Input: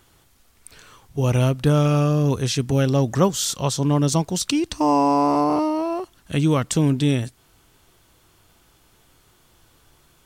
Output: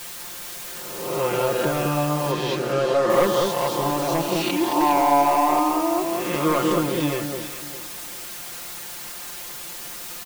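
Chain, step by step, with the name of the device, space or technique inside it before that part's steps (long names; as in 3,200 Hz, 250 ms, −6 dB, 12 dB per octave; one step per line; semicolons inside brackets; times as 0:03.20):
peak hold with a rise ahead of every peak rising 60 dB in 1.07 s
aircraft radio (band-pass filter 340–2,400 Hz; hard clipping −15 dBFS, distortion −15 dB; white noise bed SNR 11 dB)
0:02.31–0:03.10: low-pass filter 5,900 Hz 12 dB per octave
comb filter 5.7 ms, depth 94%
delay that swaps between a low-pass and a high-pass 204 ms, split 1,700 Hz, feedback 51%, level −3 dB
level −2 dB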